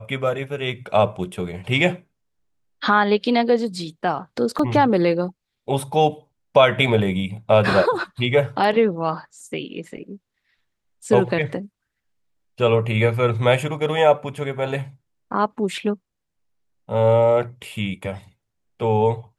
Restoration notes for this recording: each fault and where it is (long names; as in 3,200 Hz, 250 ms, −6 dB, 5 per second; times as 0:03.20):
0:04.59: drop-out 4.1 ms